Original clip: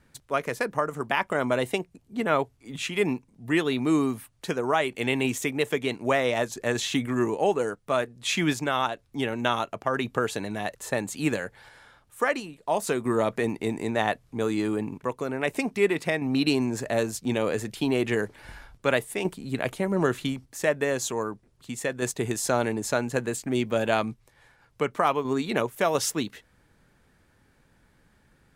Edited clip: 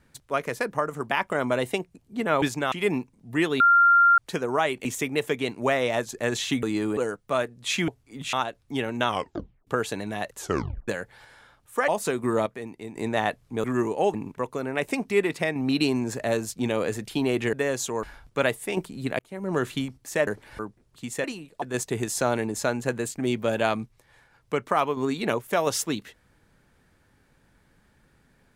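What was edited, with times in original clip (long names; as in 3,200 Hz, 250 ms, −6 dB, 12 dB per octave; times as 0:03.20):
0:02.42–0:02.87: swap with 0:08.47–0:08.77
0:03.75–0:04.33: beep over 1,390 Hz −13.5 dBFS
0:05.00–0:05.28: remove
0:07.06–0:07.56: swap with 0:14.46–0:14.80
0:09.52: tape stop 0.59 s
0:10.82: tape stop 0.50 s
0:12.32–0:12.70: move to 0:21.90
0:13.28–0:13.78: clip gain −10 dB
0:18.19–0:18.51: swap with 0:20.75–0:21.25
0:19.67–0:20.15: fade in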